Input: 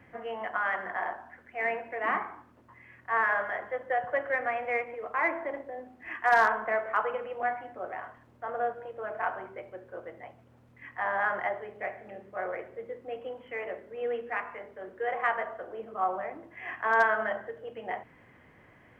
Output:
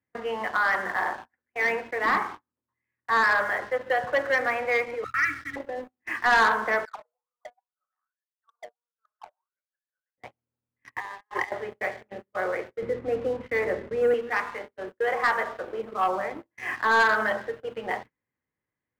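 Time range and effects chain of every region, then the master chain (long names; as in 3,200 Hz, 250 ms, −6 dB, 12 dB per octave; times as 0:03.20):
0:05.04–0:05.56: linear-phase brick-wall band-stop 300–1,100 Hz + parametric band 120 Hz +10 dB 0.93 octaves + comb filter 2.2 ms, depth 91%
0:06.85–0:10.18: low-shelf EQ 320 Hz −9.5 dB + envelope filter 610–2,100 Hz, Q 19, down, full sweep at −27.5 dBFS + hard clipping −37 dBFS
0:10.92–0:11.52: high-shelf EQ 3,200 Hz +7 dB + compressor whose output falls as the input rises −35 dBFS, ratio −0.5 + phaser with its sweep stopped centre 960 Hz, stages 8
0:12.82–0:14.14: low-pass with resonance 2,000 Hz, resonance Q 2 + spectral tilt −3.5 dB per octave + one half of a high-frequency compander encoder only
whole clip: noise gate −44 dBFS, range −27 dB; parametric band 680 Hz −9.5 dB 0.21 octaves; leveller curve on the samples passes 2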